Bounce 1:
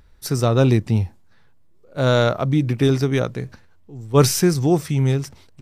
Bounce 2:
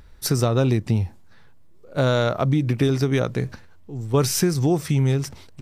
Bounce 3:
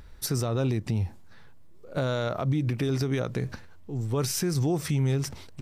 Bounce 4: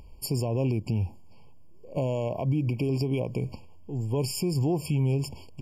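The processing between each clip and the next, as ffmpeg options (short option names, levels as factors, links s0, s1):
-af "acompressor=threshold=0.0794:ratio=4,volume=1.68"
-af "alimiter=limit=0.112:level=0:latency=1:release=132"
-af "afftfilt=real='re*eq(mod(floor(b*sr/1024/1100),2),0)':imag='im*eq(mod(floor(b*sr/1024/1100),2),0)':win_size=1024:overlap=0.75"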